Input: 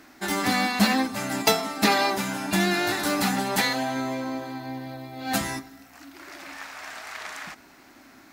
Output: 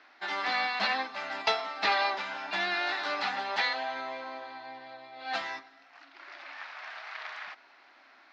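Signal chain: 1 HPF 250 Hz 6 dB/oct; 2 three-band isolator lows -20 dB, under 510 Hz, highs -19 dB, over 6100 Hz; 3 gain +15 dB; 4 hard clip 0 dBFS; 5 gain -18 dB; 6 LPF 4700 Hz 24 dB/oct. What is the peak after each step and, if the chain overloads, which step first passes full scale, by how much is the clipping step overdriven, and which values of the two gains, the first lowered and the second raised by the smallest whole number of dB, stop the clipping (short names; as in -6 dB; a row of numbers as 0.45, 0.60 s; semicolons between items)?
-7.0, -8.5, +6.5, 0.0, -18.0, -16.5 dBFS; step 3, 6.5 dB; step 3 +8 dB, step 5 -11 dB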